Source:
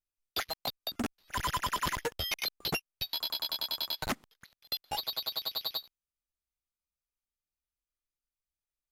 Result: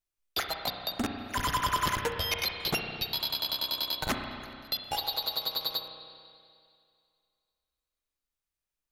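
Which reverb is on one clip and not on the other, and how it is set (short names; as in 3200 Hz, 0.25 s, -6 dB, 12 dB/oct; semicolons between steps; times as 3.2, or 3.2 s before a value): spring tank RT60 2.3 s, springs 32/53 ms, chirp 35 ms, DRR 3.5 dB; gain +2.5 dB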